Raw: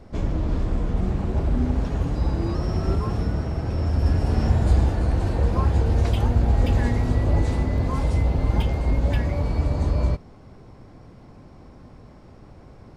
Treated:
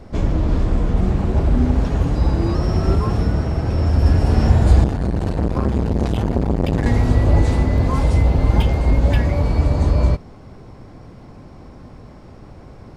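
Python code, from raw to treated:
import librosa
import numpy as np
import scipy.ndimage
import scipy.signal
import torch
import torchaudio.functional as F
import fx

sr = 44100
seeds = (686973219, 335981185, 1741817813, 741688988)

y = fx.transformer_sat(x, sr, knee_hz=370.0, at=(4.84, 6.86))
y = F.gain(torch.from_numpy(y), 6.0).numpy()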